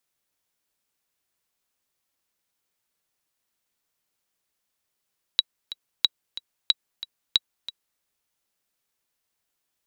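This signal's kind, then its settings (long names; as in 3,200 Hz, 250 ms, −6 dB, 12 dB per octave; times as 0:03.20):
click track 183 BPM, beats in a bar 2, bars 4, 3,890 Hz, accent 15.5 dB −4.5 dBFS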